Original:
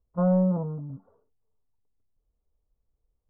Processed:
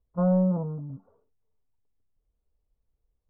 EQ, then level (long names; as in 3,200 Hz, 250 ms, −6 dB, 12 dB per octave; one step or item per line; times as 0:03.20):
high-frequency loss of the air 270 metres
0.0 dB